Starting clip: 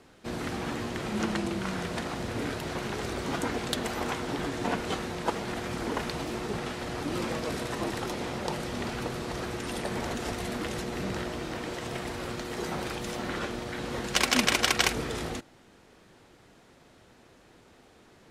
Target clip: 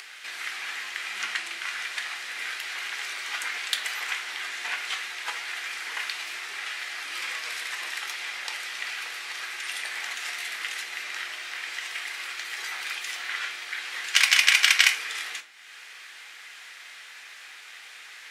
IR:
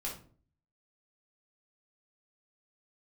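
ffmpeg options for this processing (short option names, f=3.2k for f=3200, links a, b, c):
-filter_complex "[0:a]acompressor=mode=upward:threshold=-33dB:ratio=2.5,highpass=f=2k:t=q:w=2,asplit=2[a][b];[1:a]atrim=start_sample=2205[c];[b][c]afir=irnorm=-1:irlink=0,volume=-2.5dB[d];[a][d]amix=inputs=2:normalize=0"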